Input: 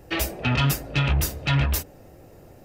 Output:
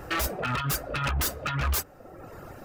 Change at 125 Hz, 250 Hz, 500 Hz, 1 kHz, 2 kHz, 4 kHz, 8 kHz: -8.5, -8.0, -2.0, +0.5, -3.0, -5.0, -1.0 dB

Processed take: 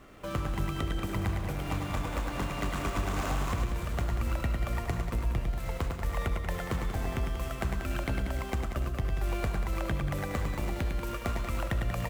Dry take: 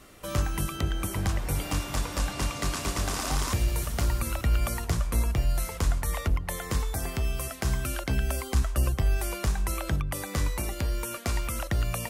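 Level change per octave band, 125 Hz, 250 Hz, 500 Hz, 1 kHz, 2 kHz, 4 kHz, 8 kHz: -3.0, -1.0, -1.0, -1.0, -2.0, -6.5, -12.5 dB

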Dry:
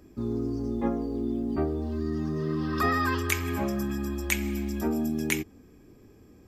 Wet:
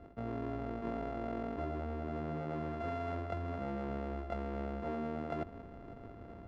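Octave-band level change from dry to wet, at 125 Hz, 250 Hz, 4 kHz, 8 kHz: -9.0 dB, -12.0 dB, -19.5 dB, under -35 dB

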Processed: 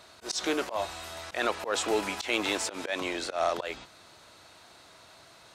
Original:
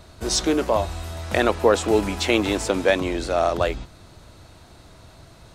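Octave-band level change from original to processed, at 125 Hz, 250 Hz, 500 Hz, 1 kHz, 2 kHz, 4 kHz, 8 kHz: -20.5, -12.0, -11.0, -7.5, -5.5, -5.5, -6.5 dB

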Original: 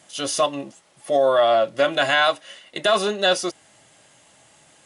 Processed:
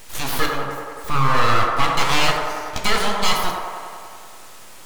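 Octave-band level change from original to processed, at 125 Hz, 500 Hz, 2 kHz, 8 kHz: +14.0, -8.0, +1.0, +2.0 dB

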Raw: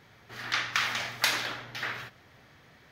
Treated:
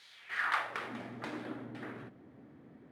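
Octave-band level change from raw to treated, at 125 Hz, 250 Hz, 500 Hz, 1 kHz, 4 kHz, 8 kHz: -4.5, +5.5, -2.0, -3.0, -17.5, -22.5 dB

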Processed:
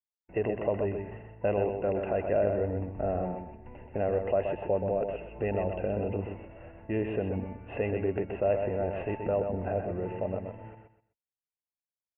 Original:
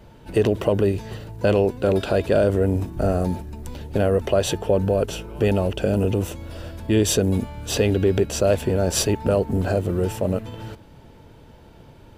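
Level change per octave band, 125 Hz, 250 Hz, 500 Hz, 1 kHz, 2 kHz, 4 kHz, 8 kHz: -12.5 dB, -11.5 dB, -8.0 dB, -5.5 dB, -10.0 dB, under -25 dB, under -40 dB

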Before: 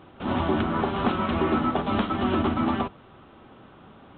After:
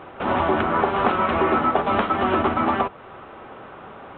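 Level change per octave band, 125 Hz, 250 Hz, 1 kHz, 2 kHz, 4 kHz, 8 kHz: -2.0 dB, -0.5 dB, +7.5 dB, +7.5 dB, +1.0 dB, n/a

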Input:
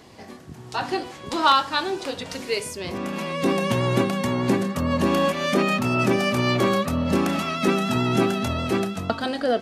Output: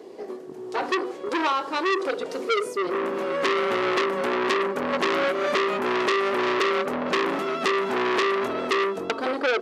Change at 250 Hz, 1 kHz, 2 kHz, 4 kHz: -6.5, -0.5, +2.0, -2.5 dB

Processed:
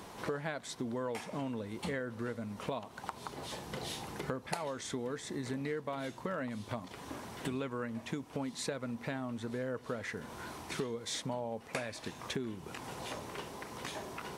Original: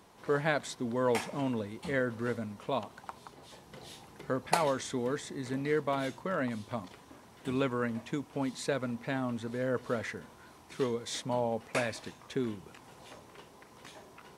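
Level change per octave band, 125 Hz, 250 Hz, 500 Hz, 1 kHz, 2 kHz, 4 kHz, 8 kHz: -3.5, -4.0, -6.0, -5.5, -5.0, -0.5, -0.5 dB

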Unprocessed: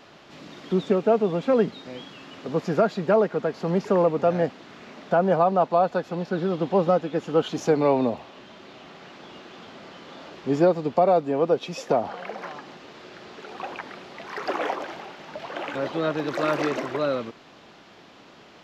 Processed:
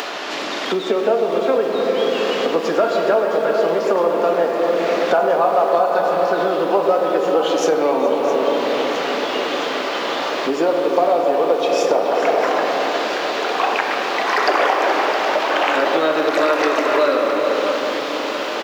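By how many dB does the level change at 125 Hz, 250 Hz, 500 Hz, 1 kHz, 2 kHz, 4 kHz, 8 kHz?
-8.5 dB, +3.0 dB, +7.5 dB, +9.5 dB, +13.5 dB, +15.0 dB, n/a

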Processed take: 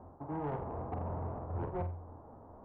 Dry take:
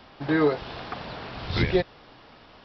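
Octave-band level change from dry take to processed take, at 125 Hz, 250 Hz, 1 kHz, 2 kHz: -7.0, -15.0, -6.5, -25.5 dB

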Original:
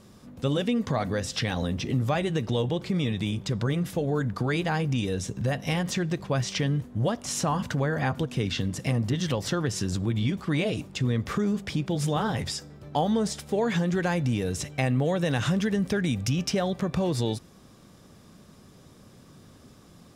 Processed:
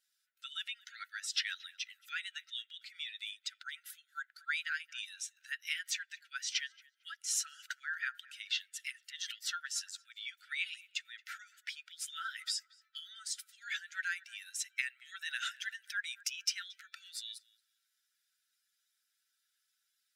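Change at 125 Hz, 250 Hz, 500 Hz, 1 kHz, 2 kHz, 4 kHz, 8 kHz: under -40 dB, under -40 dB, under -40 dB, -17.5 dB, -3.5 dB, -4.0 dB, -3.5 dB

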